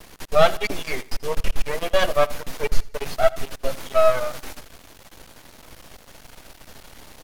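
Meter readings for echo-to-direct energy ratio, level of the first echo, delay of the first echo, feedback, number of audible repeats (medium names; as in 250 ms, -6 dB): -19.5 dB, -20.0 dB, 83 ms, 39%, 2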